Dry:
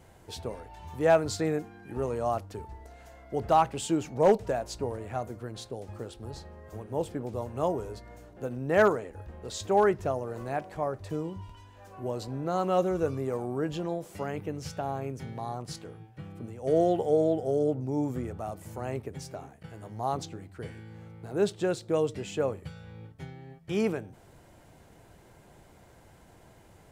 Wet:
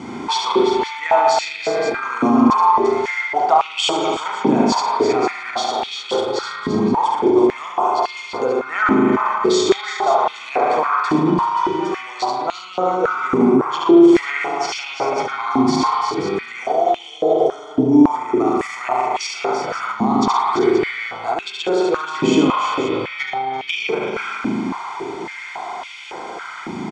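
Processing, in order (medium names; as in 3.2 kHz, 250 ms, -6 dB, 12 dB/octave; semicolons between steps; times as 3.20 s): low-pass 6.3 kHz 24 dB/octave; comb 0.9 ms, depth 78%; compression, threshold -35 dBFS, peak gain reduction 17.5 dB; on a send: multi-tap echo 71/117/172/338/384/527 ms -4.5/-10/-19/-10.5/-12.5/-13 dB; on the sum: spring tank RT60 1.5 s, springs 38 ms, chirp 40 ms, DRR 0 dB; loudness maximiser +30 dB; step-sequenced high-pass 3.6 Hz 260–2700 Hz; trim -9.5 dB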